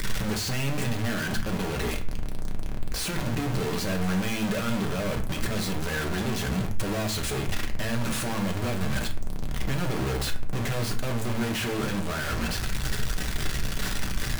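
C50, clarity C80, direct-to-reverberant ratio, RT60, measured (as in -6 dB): 11.5 dB, 16.5 dB, 2.5 dB, 0.45 s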